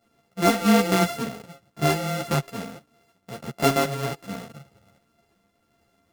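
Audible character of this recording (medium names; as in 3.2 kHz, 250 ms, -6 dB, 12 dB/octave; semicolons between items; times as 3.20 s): a buzz of ramps at a fixed pitch in blocks of 64 samples; tremolo triangle 1.4 Hz, depth 30%; a shimmering, thickened sound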